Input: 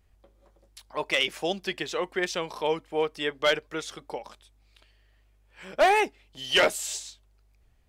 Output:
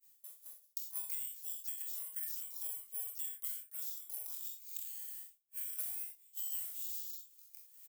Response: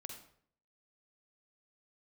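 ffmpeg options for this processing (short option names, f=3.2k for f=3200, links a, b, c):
-filter_complex "[0:a]areverse,acompressor=mode=upward:threshold=-44dB:ratio=2.5,areverse,asoftclip=type=hard:threshold=-17.5dB,aecho=1:1:24|48:0.708|0.447,acrusher=samples=4:mix=1:aa=0.000001,equalizer=f=3.6k:t=o:w=2.7:g=-6.5,crystalizer=i=8.5:c=0,aderivative,agate=range=-33dB:threshold=-42dB:ratio=3:detection=peak[a];[1:a]atrim=start_sample=2205,atrim=end_sample=3969,asetrate=57330,aresample=44100[b];[a][b]afir=irnorm=-1:irlink=0,acompressor=threshold=-44dB:ratio=12,volume=6dB"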